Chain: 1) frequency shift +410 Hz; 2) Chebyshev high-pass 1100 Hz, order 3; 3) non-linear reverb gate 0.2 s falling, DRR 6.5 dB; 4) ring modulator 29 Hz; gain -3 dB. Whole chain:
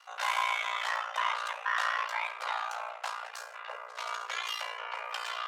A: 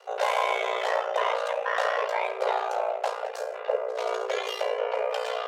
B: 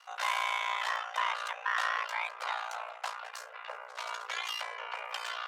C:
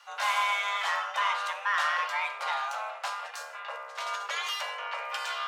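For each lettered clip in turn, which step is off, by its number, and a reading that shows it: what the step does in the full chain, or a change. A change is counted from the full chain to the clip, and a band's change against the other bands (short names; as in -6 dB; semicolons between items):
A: 2, 500 Hz band +19.5 dB; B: 3, momentary loudness spread change +1 LU; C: 4, crest factor change -2.0 dB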